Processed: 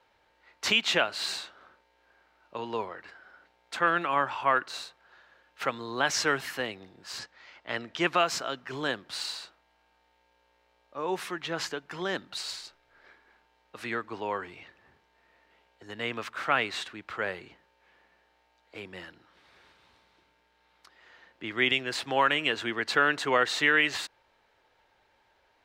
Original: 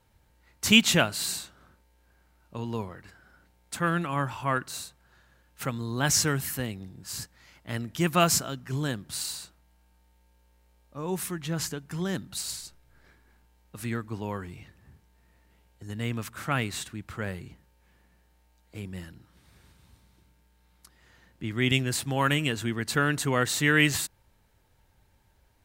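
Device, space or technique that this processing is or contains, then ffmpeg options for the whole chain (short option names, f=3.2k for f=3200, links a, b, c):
DJ mixer with the lows and highs turned down: -filter_complex "[0:a]asettb=1/sr,asplit=3[a][b][c];[a]atrim=end=7.194[d];[b]atrim=start=7.19:end=8.16,asetpts=PTS-STARTPTS,afade=t=in:d=0.004:c=qsin,afade=t=out:st=0.966:d=0.004:c=qsin,lowpass=8k[e];[c]atrim=start=8.156[f];[d][e]acrossfade=d=0.004:c1=hsin:c2=qsin[g];[g][f]acrossfade=d=0.004:c1=qsin:c2=hsin,acrossover=split=360 4800:gain=0.0794 1 0.0794[h][i][j];[h][i][j]amix=inputs=3:normalize=0,alimiter=limit=-17.5dB:level=0:latency=1:release=289,volume=5.5dB"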